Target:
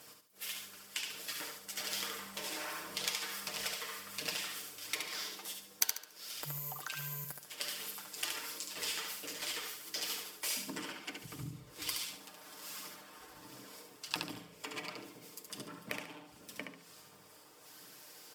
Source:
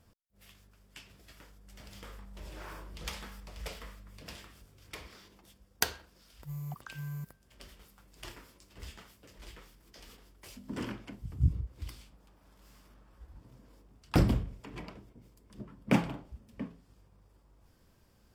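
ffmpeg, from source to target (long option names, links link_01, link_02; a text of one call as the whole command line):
ffmpeg -i in.wav -filter_complex "[0:a]highpass=310,aemphasis=mode=reproduction:type=cd,aecho=1:1:6.6:0.65,acompressor=threshold=-51dB:ratio=10,aphaser=in_gain=1:out_gain=1:delay=2.8:decay=0.28:speed=1.4:type=triangular,crystalizer=i=7.5:c=0,asplit=2[link_01][link_02];[link_02]aecho=0:1:71|142|213|284:0.562|0.18|0.0576|0.0184[link_03];[link_01][link_03]amix=inputs=2:normalize=0,volume=5.5dB" out.wav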